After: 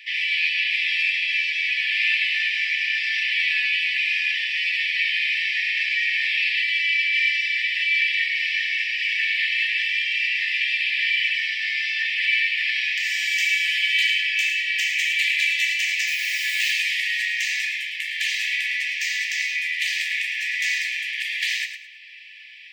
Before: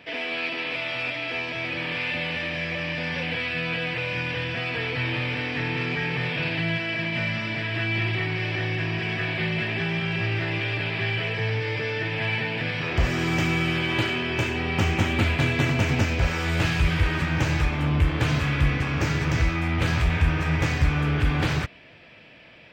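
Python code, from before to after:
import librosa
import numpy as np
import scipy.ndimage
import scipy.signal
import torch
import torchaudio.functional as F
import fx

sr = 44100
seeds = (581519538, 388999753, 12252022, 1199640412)

y = fx.dmg_noise_colour(x, sr, seeds[0], colour='blue', level_db=-50.0, at=(16.06, 16.71), fade=0.02)
y = fx.brickwall_highpass(y, sr, low_hz=1700.0)
y = fx.echo_feedback(y, sr, ms=107, feedback_pct=26, wet_db=-9)
y = F.gain(torch.from_numpy(y), 7.5).numpy()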